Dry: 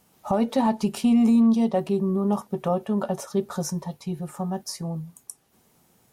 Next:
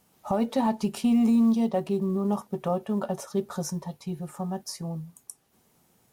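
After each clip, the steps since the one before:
log-companded quantiser 8 bits
level −3 dB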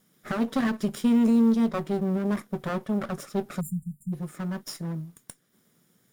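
lower of the sound and its delayed copy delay 0.57 ms
low shelf with overshoot 110 Hz −9 dB, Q 1.5
time-frequency box erased 0:03.60–0:04.13, 230–7,100 Hz

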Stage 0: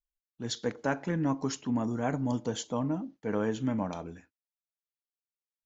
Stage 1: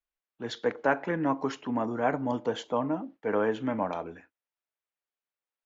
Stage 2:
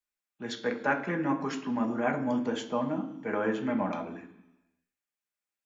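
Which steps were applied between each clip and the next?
three-way crossover with the lows and the highs turned down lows −13 dB, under 330 Hz, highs −20 dB, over 3,100 Hz; level +6.5 dB
convolution reverb RT60 0.85 s, pre-delay 3 ms, DRR 3.5 dB

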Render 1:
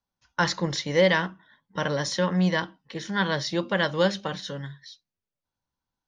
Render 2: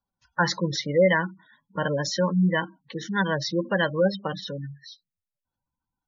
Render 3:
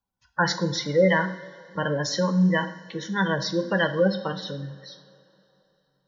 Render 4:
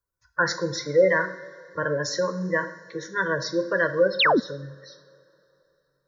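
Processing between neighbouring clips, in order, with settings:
gate on every frequency bin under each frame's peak −15 dB strong; level +1.5 dB
coupled-rooms reverb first 0.61 s, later 3.3 s, from −17 dB, DRR 7 dB
phaser with its sweep stopped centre 800 Hz, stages 6; sound drawn into the spectrogram fall, 0:04.19–0:04.40, 200–4,600 Hz −21 dBFS; level +2.5 dB

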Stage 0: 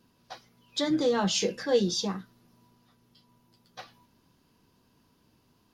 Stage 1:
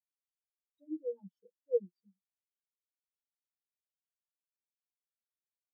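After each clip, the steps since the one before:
every bin expanded away from the loudest bin 4 to 1
level −7 dB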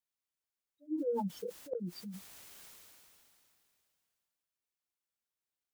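gate with flip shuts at −28 dBFS, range −32 dB
level that may fall only so fast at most 21 dB per second
level +2 dB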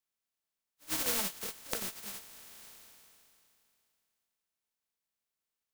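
compressing power law on the bin magnitudes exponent 0.18
tuned comb filter 220 Hz, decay 0.15 s, harmonics all, mix 60%
level +7.5 dB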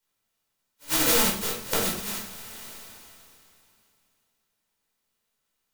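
rectangular room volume 550 cubic metres, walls furnished, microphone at 4.7 metres
level +5 dB

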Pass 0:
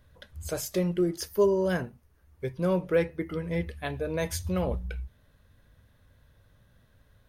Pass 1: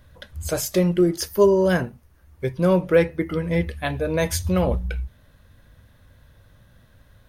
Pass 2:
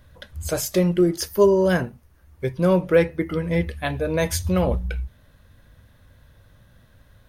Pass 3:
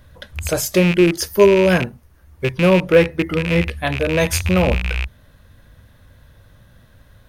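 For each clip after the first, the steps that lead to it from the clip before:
notch filter 430 Hz, Q 12; level +8 dB
no processing that can be heard
loose part that buzzes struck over −26 dBFS, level −16 dBFS; level +4.5 dB

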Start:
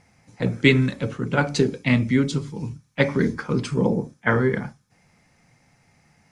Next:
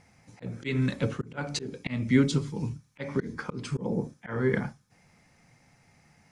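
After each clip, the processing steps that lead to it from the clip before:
volume swells 290 ms
level −1.5 dB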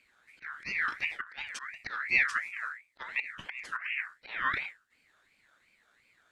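sub-octave generator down 2 octaves, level +1 dB
parametric band 330 Hz +6.5 dB 0.83 octaves
ring modulator whose carrier an LFO sweeps 1,900 Hz, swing 25%, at 2.8 Hz
level −7 dB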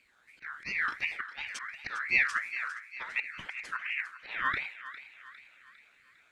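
feedback echo with a high-pass in the loop 404 ms, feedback 57%, high-pass 1,100 Hz, level −12 dB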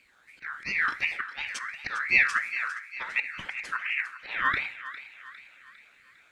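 convolution reverb RT60 0.60 s, pre-delay 3 ms, DRR 16 dB
level +4.5 dB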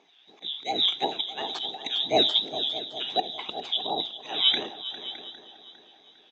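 neighbouring bands swapped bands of 2,000 Hz
loudspeaker in its box 400–4,900 Hz, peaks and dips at 550 Hz −8 dB, 790 Hz +9 dB, 1,200 Hz −4 dB, 2,900 Hz +3 dB
single-tap delay 613 ms −15.5 dB
level +3 dB

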